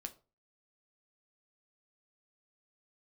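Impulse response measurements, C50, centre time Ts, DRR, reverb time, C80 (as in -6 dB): 17.5 dB, 5 ms, 6.0 dB, 0.35 s, 23.0 dB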